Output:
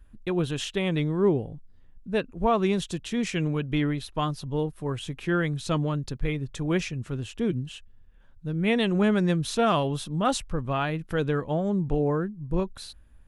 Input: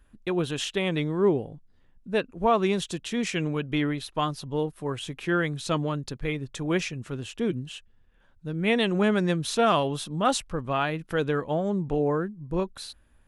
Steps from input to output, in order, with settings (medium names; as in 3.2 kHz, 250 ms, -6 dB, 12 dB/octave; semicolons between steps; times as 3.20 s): bass shelf 150 Hz +10.5 dB; trim -2 dB